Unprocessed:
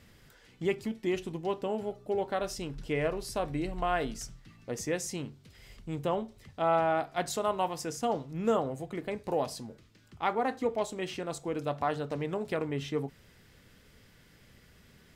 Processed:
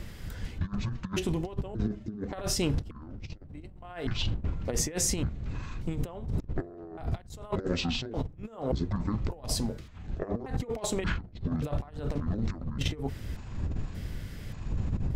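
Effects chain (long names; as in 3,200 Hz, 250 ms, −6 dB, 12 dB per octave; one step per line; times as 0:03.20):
pitch shifter gated in a rhythm −11.5 semitones, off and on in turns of 581 ms
wind on the microphone 93 Hz −34 dBFS
compressor whose output falls as the input rises −36 dBFS, ratio −0.5
level +4.5 dB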